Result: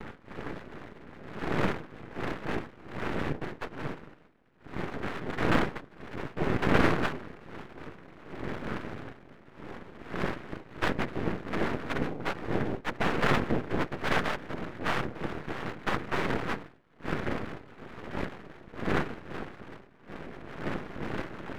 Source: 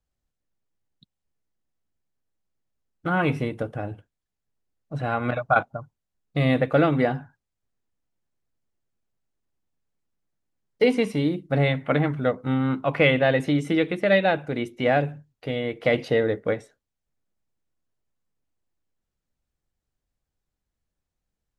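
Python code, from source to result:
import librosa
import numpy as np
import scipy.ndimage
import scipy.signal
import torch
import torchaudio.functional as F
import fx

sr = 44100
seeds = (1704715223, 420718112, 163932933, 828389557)

y = fx.dmg_wind(x, sr, seeds[0], corner_hz=460.0, level_db=-26.0)
y = scipy.signal.sosfilt(scipy.signal.ellip(4, 1.0, 40, 710.0, 'lowpass', fs=sr, output='sos'), y)
y = fx.noise_vocoder(y, sr, seeds[1], bands=3)
y = np.maximum(y, 0.0)
y = F.gain(torch.from_numpy(y), -4.0).numpy()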